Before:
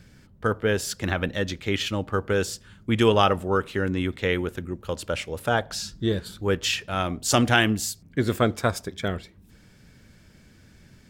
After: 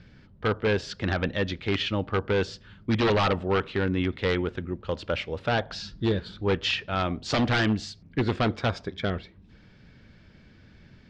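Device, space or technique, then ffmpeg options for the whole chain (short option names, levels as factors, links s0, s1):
synthesiser wavefolder: -af "aeval=exprs='0.141*(abs(mod(val(0)/0.141+3,4)-2)-1)':c=same,lowpass=f=4500:w=0.5412,lowpass=f=4500:w=1.3066"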